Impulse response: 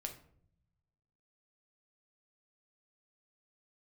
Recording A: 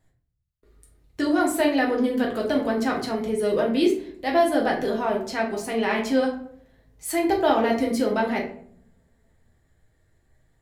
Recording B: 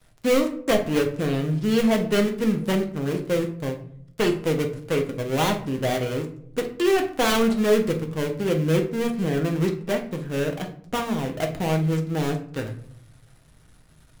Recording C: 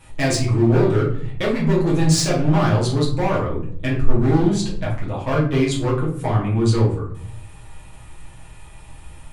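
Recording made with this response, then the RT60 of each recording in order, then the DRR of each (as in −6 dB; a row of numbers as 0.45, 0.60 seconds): B; 0.60, 0.65, 0.60 seconds; −2.0, 3.0, −6.5 decibels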